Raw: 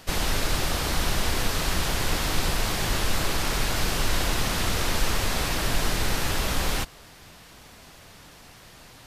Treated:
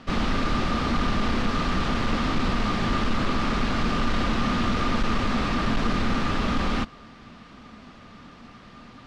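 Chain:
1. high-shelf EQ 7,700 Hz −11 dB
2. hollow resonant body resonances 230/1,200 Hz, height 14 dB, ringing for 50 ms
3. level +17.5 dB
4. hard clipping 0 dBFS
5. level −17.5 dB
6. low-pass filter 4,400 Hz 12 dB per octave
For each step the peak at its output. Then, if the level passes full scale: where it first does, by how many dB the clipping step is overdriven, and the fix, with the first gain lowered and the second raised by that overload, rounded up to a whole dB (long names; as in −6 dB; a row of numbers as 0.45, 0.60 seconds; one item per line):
−10.5, −9.0, +8.5, 0.0, −17.5, −17.0 dBFS
step 3, 8.5 dB
step 3 +8.5 dB, step 5 −8.5 dB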